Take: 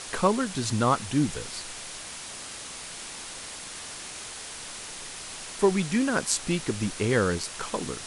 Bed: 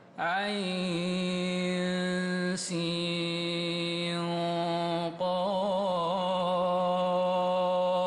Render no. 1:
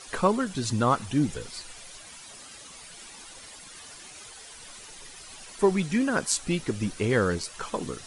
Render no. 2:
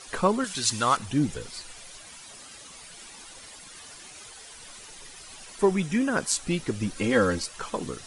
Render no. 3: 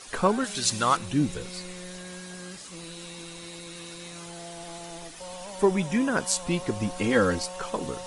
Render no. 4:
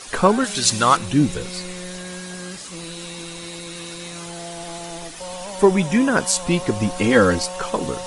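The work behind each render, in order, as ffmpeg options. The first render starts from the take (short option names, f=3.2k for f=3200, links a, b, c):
-af "afftdn=nr=11:nf=-40"
-filter_complex "[0:a]asettb=1/sr,asplit=3[a][b][c];[a]atrim=end=0.444[d];[b]atrim=start=0.44:end=0.97,asetpts=PTS-STARTPTS,afade=t=in:d=0.004:c=qsin,afade=t=out:st=0.526:d=0.004:c=qsin,tiltshelf=f=900:g=-9[e];[c]atrim=start=0.966[f];[d][e]acrossfade=d=0.004:c1=hsin:c2=qsin[g];[g][f]acrossfade=d=0.004:c1=qsin:c2=hsin,asettb=1/sr,asplit=3[h][i][j];[h]atrim=end=5.654[k];[i]atrim=start=5.65:end=6.17,asetpts=PTS-STARTPTS,afade=t=in:d=0.004:c=qsin,afade=t=out:st=0.516:d=0.004:c=qsin,bandreject=f=4.3k:w=5.7[l];[j]atrim=start=6.166[m];[k][l]acrossfade=d=0.004:c1=hsin:c2=qsin[n];[n][m]acrossfade=d=0.004:c1=qsin:c2=hsin,asettb=1/sr,asplit=3[o][p][q];[o]atrim=end=6.954[r];[p]atrim=start=6.95:end=7.46,asetpts=PTS-STARTPTS,afade=t=in:d=0.004:c=qsin,afade=t=out:st=0.506:d=0.004:c=qsin,aecho=1:1:3.7:0.81,atrim=end_sample=22491[s];[q]atrim=start=7.456[t];[r][s]acrossfade=d=0.004:c1=hsin:c2=qsin[u];[u][t]acrossfade=d=0.004:c1=qsin:c2=hsin"
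-filter_complex "[1:a]volume=-12dB[a];[0:a][a]amix=inputs=2:normalize=0"
-af "volume=7.5dB,alimiter=limit=-2dB:level=0:latency=1"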